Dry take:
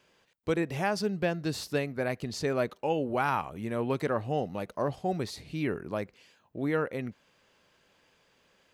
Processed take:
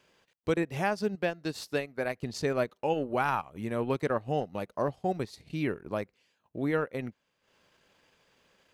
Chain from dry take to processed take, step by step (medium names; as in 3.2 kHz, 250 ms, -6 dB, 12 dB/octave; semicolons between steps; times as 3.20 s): 1.15–2.15 s: bass shelf 190 Hz -9 dB; transient shaper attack +1 dB, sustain -11 dB